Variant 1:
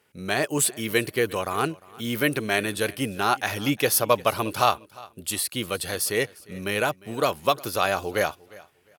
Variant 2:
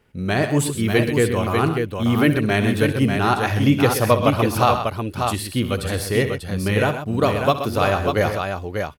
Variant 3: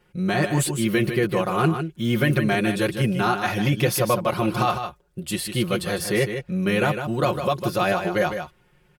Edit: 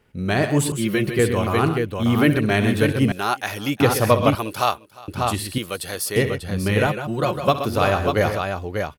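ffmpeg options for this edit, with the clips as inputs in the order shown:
-filter_complex "[2:a]asplit=2[s0][s1];[0:a]asplit=3[s2][s3][s4];[1:a]asplit=6[s5][s6][s7][s8][s9][s10];[s5]atrim=end=0.722[s11];[s0]atrim=start=0.718:end=1.192[s12];[s6]atrim=start=1.188:end=3.122[s13];[s2]atrim=start=3.118:end=3.802[s14];[s7]atrim=start=3.798:end=4.352[s15];[s3]atrim=start=4.348:end=5.082[s16];[s8]atrim=start=5.078:end=5.582[s17];[s4]atrim=start=5.578:end=6.162[s18];[s9]atrim=start=6.158:end=6.872[s19];[s1]atrim=start=6.868:end=7.482[s20];[s10]atrim=start=7.478[s21];[s11][s12]acrossfade=d=0.004:c1=hsin:c2=hsin[s22];[s22][s13]acrossfade=d=0.004:c1=hsin:c2=hsin[s23];[s23][s14]acrossfade=d=0.004:c1=hsin:c2=hsin[s24];[s24][s15]acrossfade=d=0.004:c1=hsin:c2=hsin[s25];[s25][s16]acrossfade=d=0.004:c1=hsin:c2=hsin[s26];[s26][s17]acrossfade=d=0.004:c1=hsin:c2=hsin[s27];[s27][s18]acrossfade=d=0.004:c1=hsin:c2=hsin[s28];[s28][s19]acrossfade=d=0.004:c1=hsin:c2=hsin[s29];[s29][s20]acrossfade=d=0.004:c1=hsin:c2=hsin[s30];[s30][s21]acrossfade=d=0.004:c1=hsin:c2=hsin"

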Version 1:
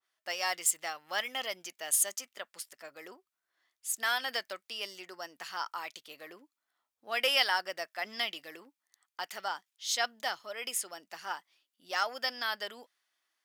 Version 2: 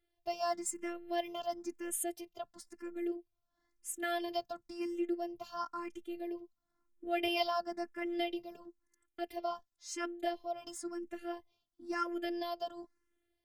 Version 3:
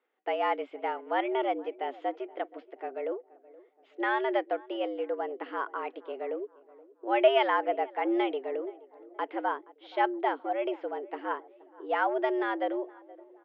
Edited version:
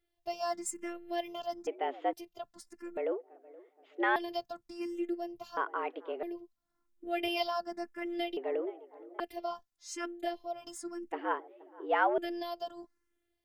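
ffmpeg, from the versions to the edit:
-filter_complex "[2:a]asplit=5[s0][s1][s2][s3][s4];[1:a]asplit=6[s5][s6][s7][s8][s9][s10];[s5]atrim=end=1.672[s11];[s0]atrim=start=1.668:end=2.132[s12];[s6]atrim=start=2.128:end=2.972[s13];[s1]atrim=start=2.968:end=4.162[s14];[s7]atrim=start=4.158:end=5.572[s15];[s2]atrim=start=5.568:end=6.232[s16];[s8]atrim=start=6.228:end=8.372[s17];[s3]atrim=start=8.368:end=9.202[s18];[s9]atrim=start=9.198:end=11.122[s19];[s4]atrim=start=11.118:end=12.182[s20];[s10]atrim=start=12.178[s21];[s11][s12]acrossfade=d=0.004:c1=hsin:c2=hsin[s22];[s22][s13]acrossfade=d=0.004:c1=hsin:c2=hsin[s23];[s23][s14]acrossfade=d=0.004:c1=hsin:c2=hsin[s24];[s24][s15]acrossfade=d=0.004:c1=hsin:c2=hsin[s25];[s25][s16]acrossfade=d=0.004:c1=hsin:c2=hsin[s26];[s26][s17]acrossfade=d=0.004:c1=hsin:c2=hsin[s27];[s27][s18]acrossfade=d=0.004:c1=hsin:c2=hsin[s28];[s28][s19]acrossfade=d=0.004:c1=hsin:c2=hsin[s29];[s29][s20]acrossfade=d=0.004:c1=hsin:c2=hsin[s30];[s30][s21]acrossfade=d=0.004:c1=hsin:c2=hsin"

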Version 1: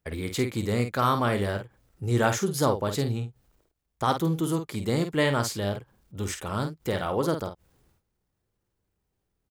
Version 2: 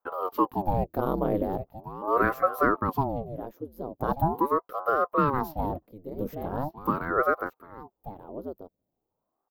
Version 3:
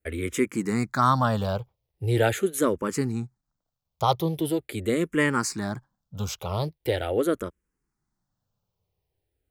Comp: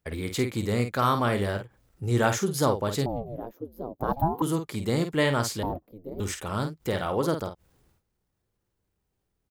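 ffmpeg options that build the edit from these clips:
-filter_complex "[1:a]asplit=2[s0][s1];[0:a]asplit=3[s2][s3][s4];[s2]atrim=end=3.062[s5];[s0]atrim=start=3.058:end=4.422[s6];[s3]atrim=start=4.418:end=5.632[s7];[s1]atrim=start=5.628:end=6.202[s8];[s4]atrim=start=6.198[s9];[s5][s6]acrossfade=d=0.004:c1=hsin:c2=hsin[s10];[s10][s7]acrossfade=d=0.004:c1=hsin:c2=hsin[s11];[s11][s8]acrossfade=d=0.004:c1=hsin:c2=hsin[s12];[s12][s9]acrossfade=d=0.004:c1=hsin:c2=hsin"

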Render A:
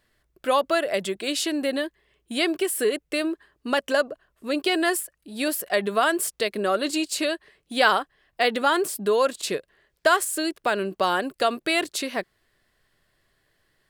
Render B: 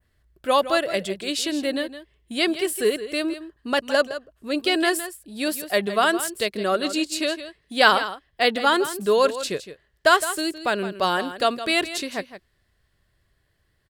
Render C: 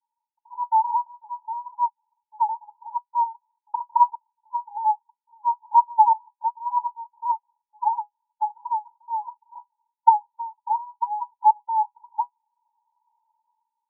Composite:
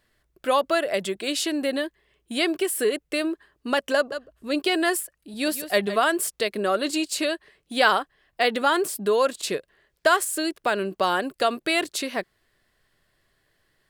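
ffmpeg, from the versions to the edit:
-filter_complex "[1:a]asplit=2[s0][s1];[0:a]asplit=3[s2][s3][s4];[s2]atrim=end=4.122[s5];[s0]atrim=start=4.118:end=4.602[s6];[s3]atrim=start=4.598:end=5.342[s7];[s1]atrim=start=5.338:end=5.962[s8];[s4]atrim=start=5.958[s9];[s5][s6]acrossfade=d=0.004:c1=hsin:c2=hsin[s10];[s10][s7]acrossfade=d=0.004:c1=hsin:c2=hsin[s11];[s11][s8]acrossfade=d=0.004:c1=hsin:c2=hsin[s12];[s12][s9]acrossfade=d=0.004:c1=hsin:c2=hsin"

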